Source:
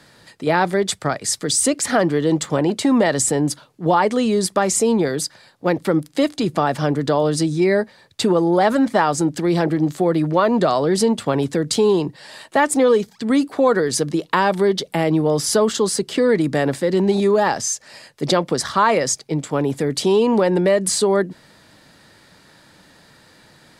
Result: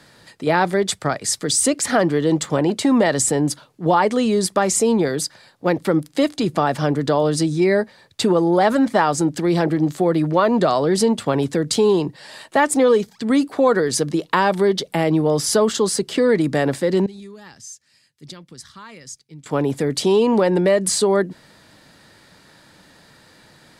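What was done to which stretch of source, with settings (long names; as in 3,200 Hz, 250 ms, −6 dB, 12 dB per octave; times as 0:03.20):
0:17.06–0:19.46: guitar amp tone stack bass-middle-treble 6-0-2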